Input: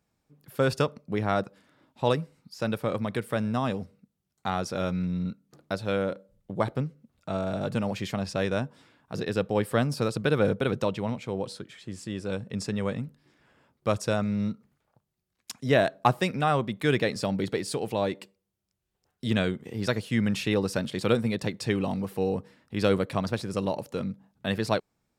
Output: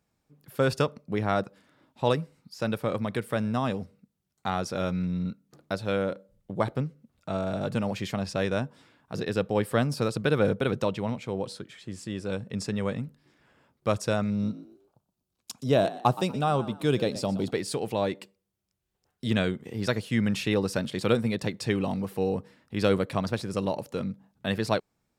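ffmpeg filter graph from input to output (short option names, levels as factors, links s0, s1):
-filter_complex "[0:a]asettb=1/sr,asplit=3[s0][s1][s2];[s0]atrim=end=14.304[s3];[s1]atrim=start=14.3:end=17.51,asetpts=PTS-STARTPTS,afade=t=in:d=0.004:c=qsin,afade=t=out:st=3.206:d=0.004:c=qsin,equalizer=f=1900:t=o:w=0.68:g=-12.5,asplit=4[s4][s5][s6][s7];[s5]adelay=121,afreqshift=62,volume=0.158[s8];[s6]adelay=242,afreqshift=124,volume=0.0507[s9];[s7]adelay=363,afreqshift=186,volume=0.0162[s10];[s4][s8][s9][s10]amix=inputs=4:normalize=0,atrim=end_sample=141561[s11];[s2]atrim=start=17.506[s12];[s3][s11]acrossfade=d=0.004:c1=hsin:c2=qsin[s13];[s13][s12]acrossfade=d=0.004:c1=qsin:c2=hsin"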